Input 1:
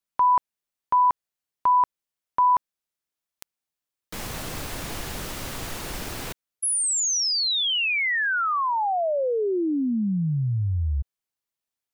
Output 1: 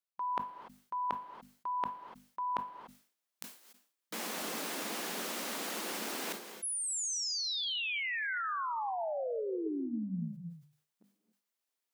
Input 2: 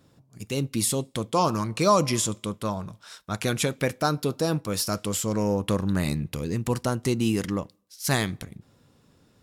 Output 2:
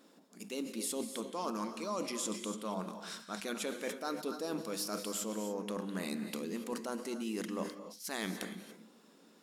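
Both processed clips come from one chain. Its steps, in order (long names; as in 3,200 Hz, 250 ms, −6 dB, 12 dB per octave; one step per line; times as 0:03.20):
linear-phase brick-wall high-pass 180 Hz
reversed playback
downward compressor 10 to 1, threshold −35 dBFS
reversed playback
mains-hum notches 50/100/150/200/250 Hz
reverb whose tail is shaped and stops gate 310 ms rising, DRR 9 dB
level that may fall only so fast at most 120 dB per second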